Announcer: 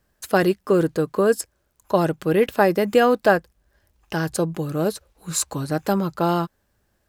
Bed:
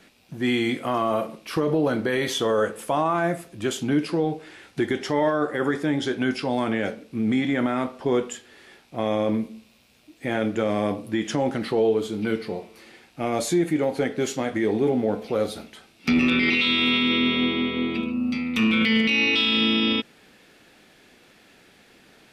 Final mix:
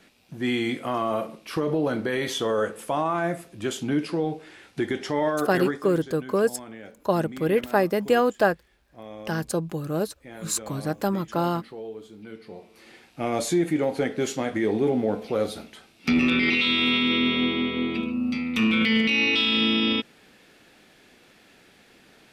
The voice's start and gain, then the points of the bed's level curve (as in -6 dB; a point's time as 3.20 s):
5.15 s, -4.0 dB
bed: 5.68 s -2.5 dB
5.89 s -16.5 dB
12.31 s -16.5 dB
12.91 s -1 dB